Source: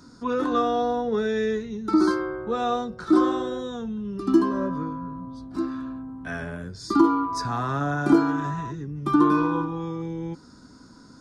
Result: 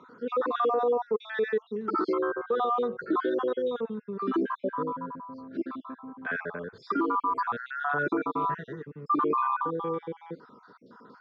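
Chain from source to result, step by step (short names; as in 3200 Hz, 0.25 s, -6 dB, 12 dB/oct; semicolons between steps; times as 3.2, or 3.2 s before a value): random spectral dropouts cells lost 48%; speaker cabinet 290–3200 Hz, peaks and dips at 300 Hz -8 dB, 460 Hz +8 dB, 700 Hz -4 dB, 1200 Hz +5 dB, 2700 Hz -5 dB; limiter -22 dBFS, peak gain reduction 11 dB; gain +3 dB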